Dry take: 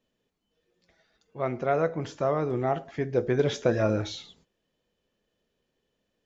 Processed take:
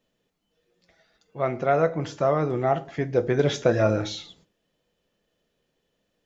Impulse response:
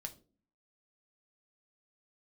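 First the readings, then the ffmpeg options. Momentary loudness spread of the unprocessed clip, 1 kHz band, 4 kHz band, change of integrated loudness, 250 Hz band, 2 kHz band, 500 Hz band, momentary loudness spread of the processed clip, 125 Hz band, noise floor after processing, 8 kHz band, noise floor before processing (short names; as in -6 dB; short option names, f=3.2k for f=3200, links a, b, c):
8 LU, +4.5 dB, +4.0 dB, +3.5 dB, +2.5 dB, +4.0 dB, +3.5 dB, 7 LU, +3.5 dB, -76 dBFS, n/a, -79 dBFS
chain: -filter_complex "[0:a]asplit=2[a][b];[1:a]atrim=start_sample=2205,lowshelf=f=120:g=-10[c];[b][c]afir=irnorm=-1:irlink=0,volume=-0.5dB[d];[a][d]amix=inputs=2:normalize=0"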